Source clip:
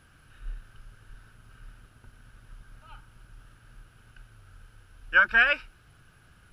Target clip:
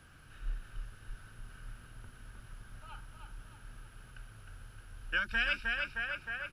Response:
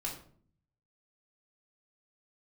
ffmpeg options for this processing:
-filter_complex "[0:a]asplit=2[link_01][link_02];[link_02]aecho=0:1:310|620|930|1240|1550|1860:0.531|0.25|0.117|0.0551|0.0259|0.0122[link_03];[link_01][link_03]amix=inputs=2:normalize=0,acrossover=split=230|3000[link_04][link_05][link_06];[link_05]acompressor=threshold=-35dB:ratio=6[link_07];[link_04][link_07][link_06]amix=inputs=3:normalize=0"

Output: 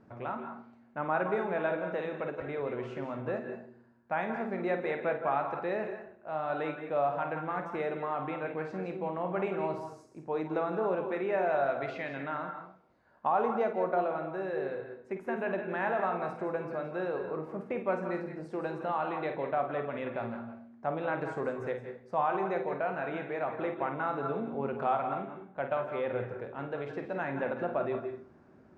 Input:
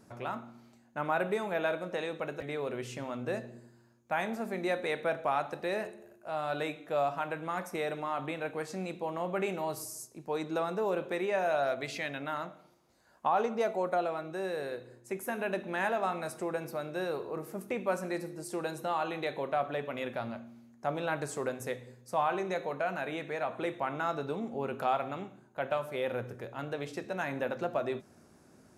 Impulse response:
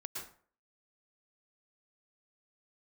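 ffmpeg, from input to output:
-filter_complex "[0:a]lowpass=2000,asplit=2[link_01][link_02];[1:a]atrim=start_sample=2205,afade=type=out:start_time=0.32:duration=0.01,atrim=end_sample=14553,adelay=51[link_03];[link_02][link_03]afir=irnorm=-1:irlink=0,volume=-3.5dB[link_04];[link_01][link_04]amix=inputs=2:normalize=0"

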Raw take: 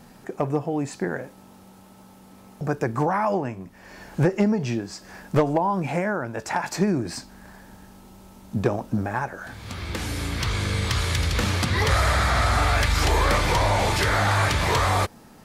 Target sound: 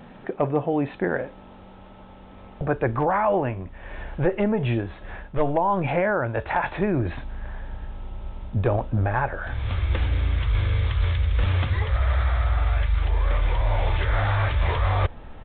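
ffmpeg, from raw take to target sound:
ffmpeg -i in.wav -af "asubboost=boost=12:cutoff=56,aresample=8000,aresample=44100,areverse,acompressor=threshold=-22dB:ratio=16,areverse,equalizer=frequency=560:width_type=o:width=0.38:gain=4,volume=4dB" out.wav

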